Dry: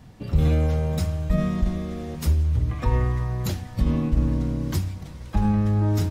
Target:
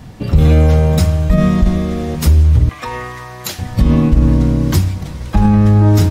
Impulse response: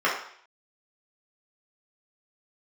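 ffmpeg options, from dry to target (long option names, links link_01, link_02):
-filter_complex "[0:a]asettb=1/sr,asplit=3[link_01][link_02][link_03];[link_01]atrim=end=2.694[link_04];[link_02]atrim=start=2.69:end=3.59,asetpts=PTS-STARTPTS,afade=type=in:duration=0.004:curve=qsin,afade=type=out:start_time=0.896:duration=0.004:curve=qsin,highpass=frequency=1400:poles=1[link_05];[link_03]atrim=start=3.586[link_06];[link_04][link_05]acrossfade=duration=0.004:curve1=hsin:curve2=qsin[link_07];[link_07][link_06]acrossfade=duration=0.004:curve1=qsin:curve2=hsin,alimiter=level_in=13.5dB:limit=-1dB:release=50:level=0:latency=1,volume=-1dB"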